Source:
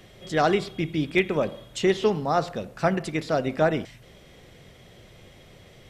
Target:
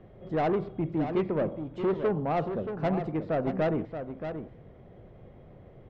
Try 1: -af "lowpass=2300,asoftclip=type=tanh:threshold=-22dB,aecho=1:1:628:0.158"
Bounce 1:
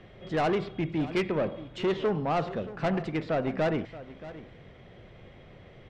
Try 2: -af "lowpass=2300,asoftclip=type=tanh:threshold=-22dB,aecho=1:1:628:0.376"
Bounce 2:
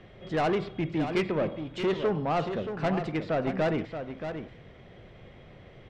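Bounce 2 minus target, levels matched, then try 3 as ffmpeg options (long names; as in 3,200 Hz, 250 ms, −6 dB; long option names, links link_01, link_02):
2,000 Hz band +5.0 dB
-af "lowpass=910,asoftclip=type=tanh:threshold=-22dB,aecho=1:1:628:0.376"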